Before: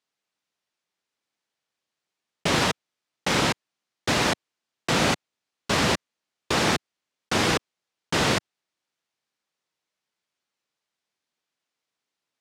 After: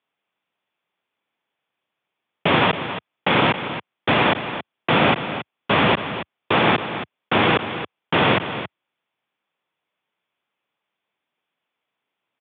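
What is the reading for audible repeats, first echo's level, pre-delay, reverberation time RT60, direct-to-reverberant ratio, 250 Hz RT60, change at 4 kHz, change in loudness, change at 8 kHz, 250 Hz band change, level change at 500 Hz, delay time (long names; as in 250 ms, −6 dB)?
1, −11.0 dB, no reverb audible, no reverb audible, no reverb audible, no reverb audible, +2.5 dB, +4.5 dB, below −40 dB, +5.0 dB, +6.5 dB, 274 ms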